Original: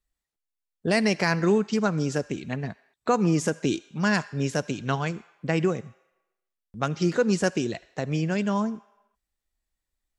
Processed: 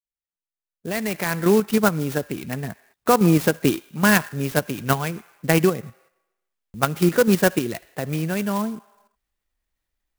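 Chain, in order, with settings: fade-in on the opening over 1.85 s; peaking EQ 2.2 kHz +2.5 dB 2.1 oct; in parallel at +2.5 dB: level held to a coarse grid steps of 23 dB; on the sum: sampling jitter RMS 0.047 ms

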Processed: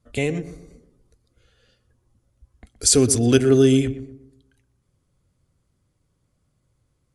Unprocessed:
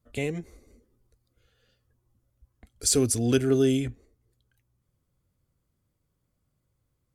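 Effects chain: elliptic low-pass 11 kHz, stop band 40 dB; on a send: filtered feedback delay 121 ms, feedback 42%, low-pass 1.2 kHz, level -12 dB; on the sum: trim +7.5 dB

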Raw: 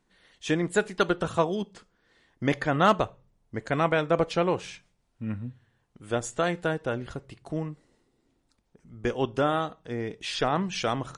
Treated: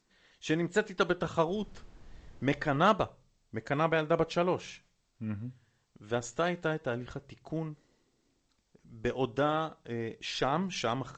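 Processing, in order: vibrato 2.8 Hz 25 cents; 1.47–2.81 s: added noise brown -46 dBFS; trim -4 dB; G.722 64 kbps 16 kHz

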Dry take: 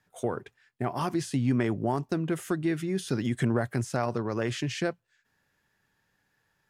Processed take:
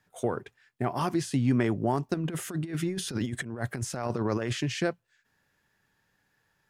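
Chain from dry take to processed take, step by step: 2.14–4.53 s: compressor with a negative ratio -31 dBFS, ratio -0.5; trim +1 dB

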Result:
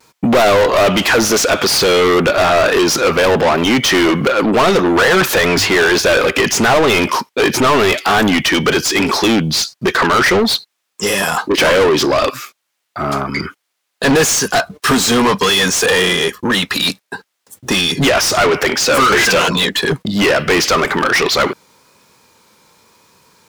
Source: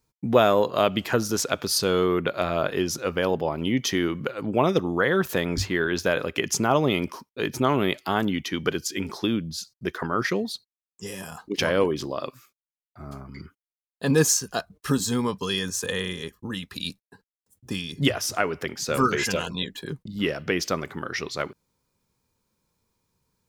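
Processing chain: vibrato 0.92 Hz 36 cents; overdrive pedal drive 36 dB, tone 4.5 kHz, clips at -4 dBFS

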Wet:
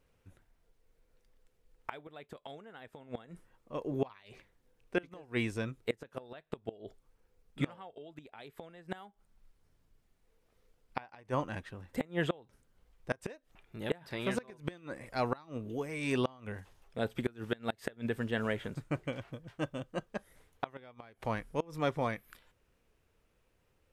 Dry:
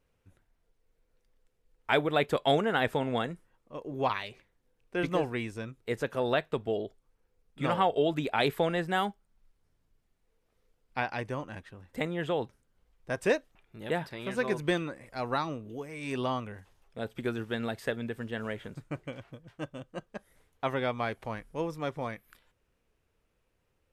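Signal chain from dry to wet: 9.00–11.40 s: dynamic bell 860 Hz, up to +4 dB, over -44 dBFS, Q 1.2; inverted gate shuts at -21 dBFS, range -26 dB; trim +2.5 dB

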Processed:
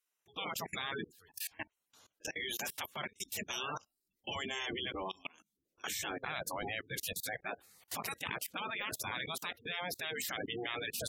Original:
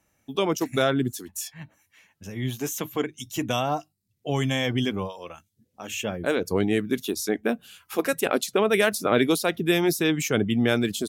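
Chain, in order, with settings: de-esser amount 55%; spectral gate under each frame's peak -30 dB strong; 4.36–6.63 s: peaking EQ 100 Hz +14 dB 0.59 oct; spectral gate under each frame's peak -15 dB weak; level held to a coarse grid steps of 24 dB; trim +9 dB

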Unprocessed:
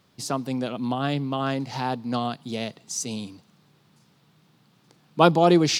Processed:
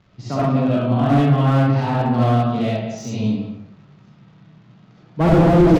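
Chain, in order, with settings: speakerphone echo 180 ms, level -10 dB; reverberation RT60 0.75 s, pre-delay 30 ms, DRR -9.5 dB; crackle 250 per s -40 dBFS; steep low-pass 7.1 kHz 72 dB/octave; peaking EQ 76 Hz +7 dB 1.9 oct; harmonic-percussive split harmonic +5 dB; tone controls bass +5 dB, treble -14 dB; slew-rate limiter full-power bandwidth 220 Hz; trim -6 dB

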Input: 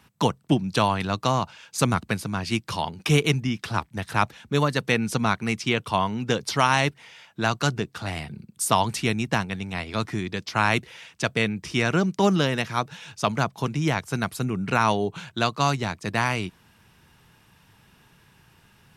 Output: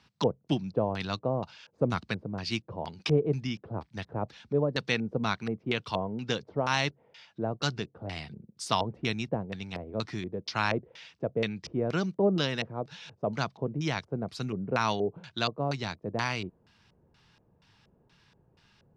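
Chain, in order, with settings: LFO low-pass square 2.1 Hz 530–4800 Hz; trim -7.5 dB

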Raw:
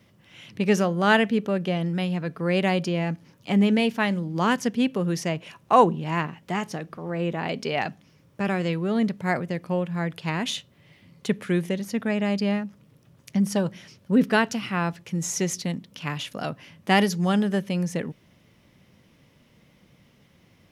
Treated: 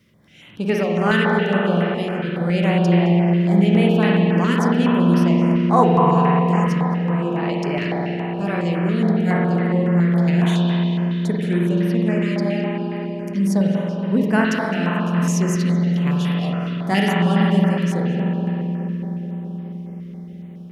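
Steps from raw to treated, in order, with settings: de-hum 130 Hz, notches 34; on a send: filtered feedback delay 213 ms, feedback 84%, low-pass 1.8 kHz, level -9 dB; on the sum: spring tank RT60 3.3 s, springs 46 ms, chirp 50 ms, DRR -3.5 dB; step-sequenced notch 7.2 Hz 790–7100 Hz

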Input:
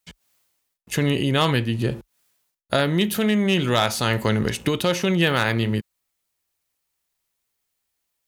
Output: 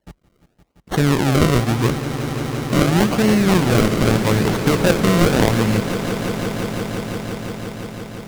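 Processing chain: decimation with a swept rate 35×, swing 100% 0.83 Hz; echo with a slow build-up 172 ms, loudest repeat 5, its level -14 dB; loudspeaker Doppler distortion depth 0.18 ms; trim +4.5 dB

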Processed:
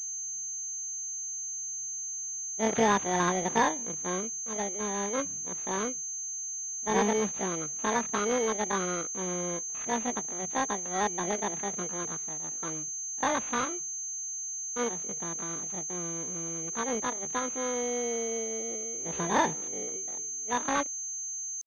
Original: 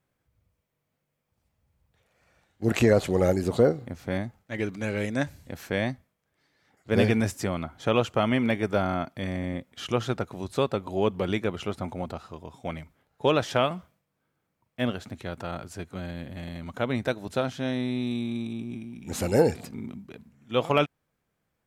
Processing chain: bit-reversed sample order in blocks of 32 samples; pitch shift +11.5 st; class-D stage that switches slowly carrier 6.3 kHz; trim -3 dB

